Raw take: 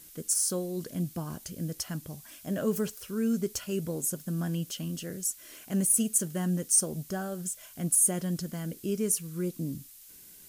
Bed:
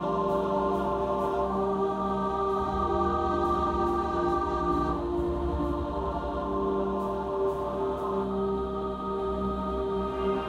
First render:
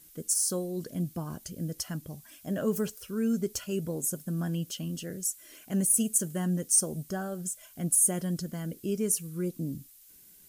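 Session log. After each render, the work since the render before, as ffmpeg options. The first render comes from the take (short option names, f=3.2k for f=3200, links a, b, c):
-af "afftdn=nr=6:nf=-52"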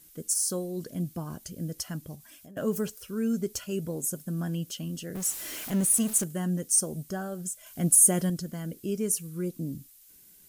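-filter_complex "[0:a]asettb=1/sr,asplit=3[a][b][c];[a]atrim=end=2.154[d];[b]atrim=start=2.15:end=2.57,asetpts=PTS-STARTPTS,afade=t=in:d=0.004:c=qsin,afade=t=out:st=0.416:d=0.004:c=qsin,acompressor=threshold=-45dB:ratio=12:attack=3.2:release=140:knee=1:detection=peak[e];[c]atrim=start=2.566[f];[d][e]acrossfade=d=0.004:c1=hsin:c2=qsin[g];[g][f]acrossfade=d=0.004:c1=qsin:c2=hsin,asettb=1/sr,asplit=3[h][i][j];[h]atrim=end=5.154[k];[i]atrim=start=5.15:end=6.24,asetpts=PTS-STARTPTS,afade=t=in:d=0.004:c=qsin,afade=t=out:st=1.086:d=0.004:c=qsin,aeval=exprs='val(0)+0.5*0.0211*sgn(val(0))':c=same[l];[j]atrim=start=6.236[m];[k][l]acrossfade=d=0.004:c1=hsin:c2=qsin[n];[n][m]acrossfade=d=0.004:c1=qsin:c2=hsin,asettb=1/sr,asplit=3[o][p][q];[o]atrim=end=7.664[r];[p]atrim=start=7.66:end=8.3,asetpts=PTS-STARTPTS,afade=t=in:d=0.004:c=qsin,afade=t=out:st=0.636:d=0.004:c=qsin,acontrast=32[s];[q]atrim=start=8.296[t];[r][s]acrossfade=d=0.004:c1=hsin:c2=qsin[u];[u][t]acrossfade=d=0.004:c1=qsin:c2=hsin"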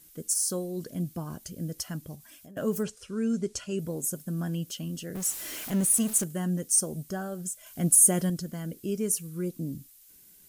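-filter_complex "[0:a]asettb=1/sr,asplit=3[a][b][c];[a]atrim=end=2.834[d];[b]atrim=start=2.83:end=3.79,asetpts=PTS-STARTPTS,afade=t=in:d=0.004:c=qsin,afade=t=out:st=0.956:d=0.004:c=qsin,lowpass=f=9k:w=0.5412,lowpass=f=9k:w=1.3066[e];[c]atrim=start=3.786[f];[d][e]acrossfade=d=0.004:c1=hsin:c2=qsin[g];[g][f]acrossfade=d=0.004:c1=qsin:c2=hsin"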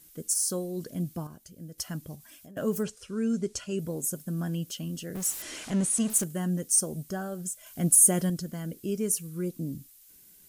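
-filter_complex "[0:a]asettb=1/sr,asplit=3[a][b][c];[a]atrim=end=5.424[d];[b]atrim=start=5.42:end=6.1,asetpts=PTS-STARTPTS,afade=t=in:d=0.004:c=qsin,afade=t=out:st=0.676:d=0.004:c=qsin,lowpass=f=8.9k:w=0.5412,lowpass=f=8.9k:w=1.3066[e];[c]atrim=start=6.096[f];[d][e]acrossfade=d=0.004:c1=hsin:c2=qsin[g];[g][f]acrossfade=d=0.004:c1=qsin:c2=hsin,asplit=3[h][i][j];[h]atrim=end=1.272[k];[i]atrim=start=1.268:end=1.782,asetpts=PTS-STARTPTS,volume=-9dB[l];[j]atrim=start=1.778[m];[k][l]acrossfade=d=0.004:c1=hsin:c2=hsin[n];[n][m]acrossfade=d=0.004:c1=hsin:c2=hsin"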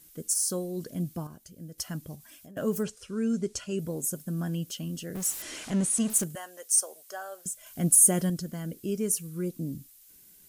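-filter_complex "[0:a]asettb=1/sr,asplit=3[a][b][c];[a]atrim=end=6.354[d];[b]atrim=start=6.35:end=7.46,asetpts=PTS-STARTPTS,afade=t=in:d=0.004:c=qsin,afade=t=out:st=1.106:d=0.004:c=qsin,highpass=f=550:w=0.5412,highpass=f=550:w=1.3066[e];[c]atrim=start=7.456[f];[d][e]acrossfade=d=0.004:c1=hsin:c2=qsin[g];[g][f]acrossfade=d=0.004:c1=qsin:c2=hsin"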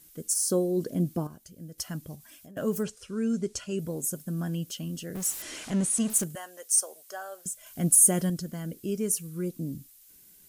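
-filter_complex "[0:a]asettb=1/sr,asplit=3[a][b][c];[a]atrim=end=0.424[d];[b]atrim=start=0.42:end=1.28,asetpts=PTS-STARTPTS,afade=t=in:d=0.004:c=qsin,afade=t=out:st=0.856:d=0.004:c=qsin,equalizer=f=370:w=0.61:g=8.5[e];[c]atrim=start=1.276[f];[d][e]acrossfade=d=0.004:c1=hsin:c2=qsin[g];[g][f]acrossfade=d=0.004:c1=qsin:c2=hsin"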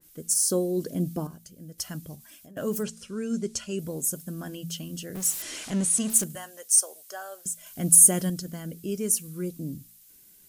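-af "bandreject=f=56.08:t=h:w=4,bandreject=f=112.16:t=h:w=4,bandreject=f=168.24:t=h:w=4,bandreject=f=224.32:t=h:w=4,adynamicequalizer=threshold=0.00562:dfrequency=2400:dqfactor=0.7:tfrequency=2400:tqfactor=0.7:attack=5:release=100:ratio=0.375:range=2:mode=boostabove:tftype=highshelf"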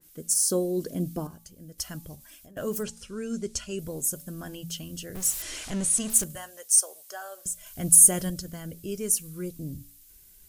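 -af "asubboost=boost=8:cutoff=69,bandreject=f=284.3:t=h:w=4,bandreject=f=568.6:t=h:w=4,bandreject=f=852.9:t=h:w=4,bandreject=f=1.1372k:t=h:w=4"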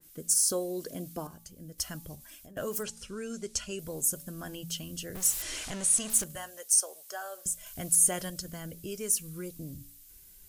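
-filter_complex "[0:a]acrossover=split=500|5600[a][b][c];[a]acompressor=threshold=-39dB:ratio=6[d];[c]alimiter=limit=-15dB:level=0:latency=1:release=322[e];[d][b][e]amix=inputs=3:normalize=0"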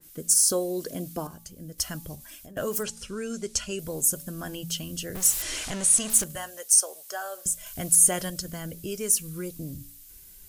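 -af "volume=5dB"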